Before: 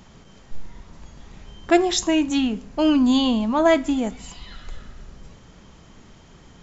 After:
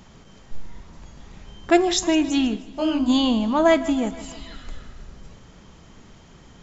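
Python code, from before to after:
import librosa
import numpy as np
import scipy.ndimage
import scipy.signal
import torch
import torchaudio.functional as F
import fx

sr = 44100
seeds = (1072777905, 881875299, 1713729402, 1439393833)

p1 = x + fx.echo_feedback(x, sr, ms=159, feedback_pct=58, wet_db=-17, dry=0)
y = fx.detune_double(p1, sr, cents=fx.line((2.55, 58.0), (3.08, 45.0)), at=(2.55, 3.08), fade=0.02)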